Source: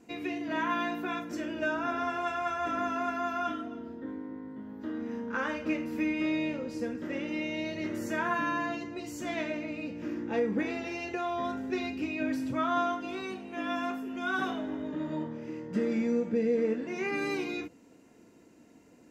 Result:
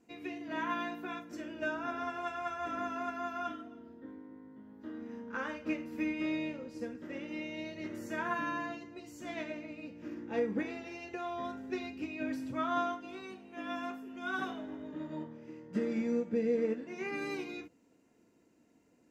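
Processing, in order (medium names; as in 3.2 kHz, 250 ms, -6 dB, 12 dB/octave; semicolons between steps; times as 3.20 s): upward expansion 1.5:1, over -40 dBFS; trim -2.5 dB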